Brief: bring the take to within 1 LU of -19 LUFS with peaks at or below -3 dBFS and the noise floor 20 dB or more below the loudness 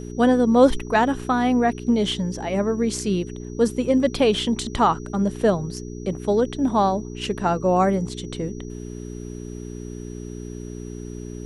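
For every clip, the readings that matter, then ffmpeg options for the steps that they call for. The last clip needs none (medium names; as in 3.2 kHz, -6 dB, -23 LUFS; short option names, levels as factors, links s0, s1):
hum 60 Hz; highest harmonic 420 Hz; hum level -31 dBFS; steady tone 5.8 kHz; tone level -49 dBFS; loudness -21.5 LUFS; peak level -3.5 dBFS; loudness target -19.0 LUFS
-> -af "bandreject=f=60:t=h:w=4,bandreject=f=120:t=h:w=4,bandreject=f=180:t=h:w=4,bandreject=f=240:t=h:w=4,bandreject=f=300:t=h:w=4,bandreject=f=360:t=h:w=4,bandreject=f=420:t=h:w=4"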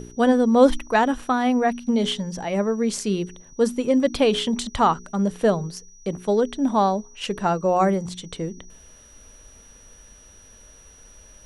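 hum not found; steady tone 5.8 kHz; tone level -49 dBFS
-> -af "bandreject=f=5800:w=30"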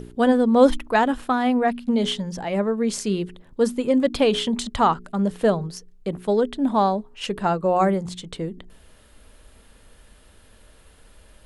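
steady tone not found; loudness -22.0 LUFS; peak level -4.0 dBFS; loudness target -19.0 LUFS
-> -af "volume=1.41,alimiter=limit=0.708:level=0:latency=1"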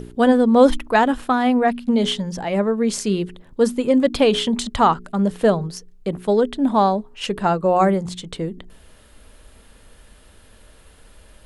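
loudness -19.0 LUFS; peak level -3.0 dBFS; noise floor -49 dBFS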